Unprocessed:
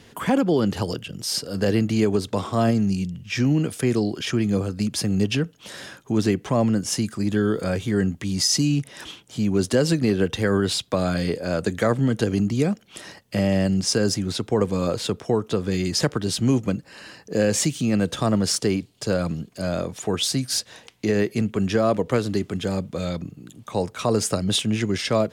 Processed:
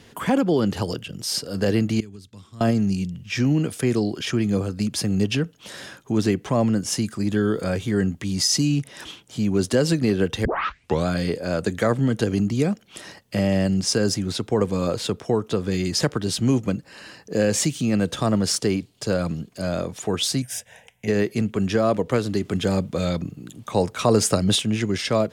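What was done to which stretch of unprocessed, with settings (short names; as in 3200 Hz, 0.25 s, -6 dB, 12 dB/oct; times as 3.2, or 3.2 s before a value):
2–2.61 passive tone stack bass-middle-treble 6-0-2
10.45 tape start 0.61 s
20.42–21.08 fixed phaser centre 1200 Hz, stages 6
22.45–24.55 gain +3.5 dB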